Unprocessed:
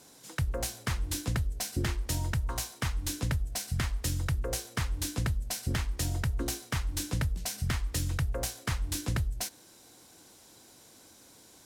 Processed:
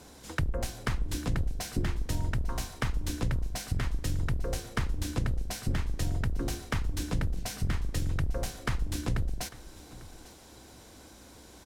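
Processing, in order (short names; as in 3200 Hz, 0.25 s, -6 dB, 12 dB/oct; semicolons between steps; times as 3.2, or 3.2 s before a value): octaver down 2 oct, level +1 dB; high shelf 4100 Hz -9 dB; compressor 2.5:1, threshold -36 dBFS, peak gain reduction 10 dB; on a send: echo 0.847 s -19.5 dB; on the sum: gain +6.5 dB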